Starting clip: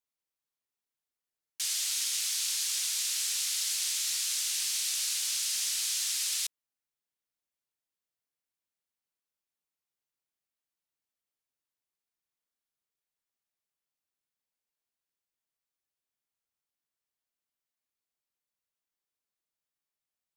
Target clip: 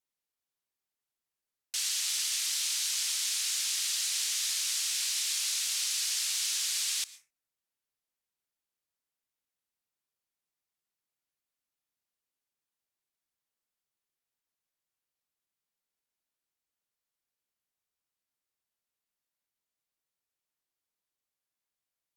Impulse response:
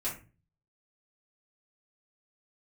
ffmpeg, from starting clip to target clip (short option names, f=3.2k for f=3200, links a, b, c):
-filter_complex "[0:a]asplit=2[a][b];[1:a]atrim=start_sample=2205,atrim=end_sample=6615,adelay=100[c];[b][c]afir=irnorm=-1:irlink=0,volume=-21.5dB[d];[a][d]amix=inputs=2:normalize=0,asetrate=40517,aresample=44100"